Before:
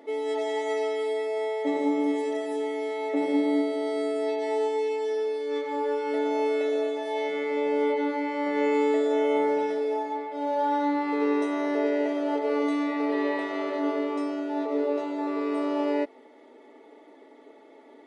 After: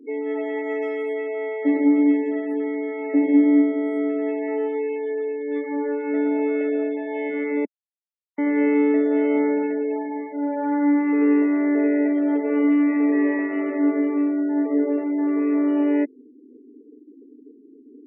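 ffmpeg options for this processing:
-filter_complex "[0:a]asettb=1/sr,asplit=3[a][b][c];[a]atrim=end=0.824[d];[b]atrim=start=0.82:end=2.17,asetpts=PTS-STARTPTS,afade=t=in:d=0.004:c=qsin,afade=t=out:st=1.346:d=0.004:c=qsin,highshelf=f=2.8k:g=5.5[e];[c]atrim=start=2.166[f];[d][e]acrossfade=d=0.004:c1=hsin:c2=qsin[g];[g][f]acrossfade=d=0.004:c1=qsin:c2=hsin,asettb=1/sr,asplit=3[h][i][j];[h]atrim=end=3.424[k];[i]atrim=start=3.42:end=3.98,asetpts=PTS-STARTPTS,afade=t=in:d=0.004:c=qsin,afade=t=out:st=0.556:d=0.004:c=qsin,highshelf=f=6.1k:g=8[l];[j]atrim=start=3.976[m];[k][l]acrossfade=d=0.004:c1=hsin:c2=qsin[n];[n][m]acrossfade=d=0.004:c1=qsin:c2=hsin,asplit=3[o][p][q];[o]atrim=end=7.65,asetpts=PTS-STARTPTS,afade=t=out:st=7.646:d=0.004:c=hsin[r];[p]atrim=start=7.65:end=8.38,asetpts=PTS-STARTPTS,volume=0[s];[q]atrim=start=8.38,asetpts=PTS-STARTPTS,afade=t=in:d=0.004:c=hsin[t];[r][s][t]concat=n=3:v=0:a=1,equalizer=f=125:t=o:w=1:g=8,equalizer=f=250:t=o:w=1:g=10,equalizer=f=500:t=o:w=1:g=-6,equalizer=f=1k:t=o:w=1:g=-10,equalizer=f=2k:t=o:w=1:g=5,equalizer=f=4k:t=o:w=1:g=-11,afftfilt=real='re*gte(hypot(re,im),0.01)':imag='im*gte(hypot(re,im),0.01)':win_size=1024:overlap=0.75,acrossover=split=240 2700:gain=0.0708 1 0.0891[u][v][w];[u][v][w]amix=inputs=3:normalize=0,volume=5.5dB"

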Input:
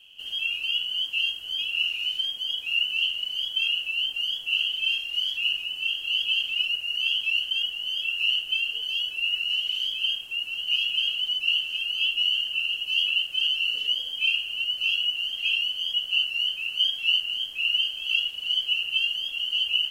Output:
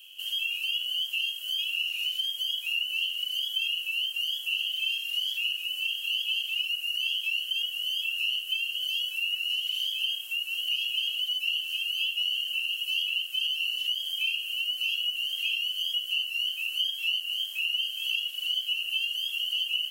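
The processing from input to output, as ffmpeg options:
-filter_complex "[0:a]asettb=1/sr,asplit=3[a][b][c];[a]atrim=end=4.864[d];[b]atrim=start=4.86:end=5.68,asetpts=PTS-STARTPTS,afade=t=in:d=0.004:c=qsin,afade=t=out:st=0.816:d=0.004:c=qsin,highpass=140[e];[c]atrim=start=5.676[f];[d][e]acrossfade=d=0.004:c1=hsin:c2=qsin[g];[g][f]acrossfade=d=0.004:c1=qsin:c2=hsin,acompressor=threshold=-31dB:ratio=2.5,highpass=f=1.3k:p=1,aemphasis=mode=production:type=bsi"

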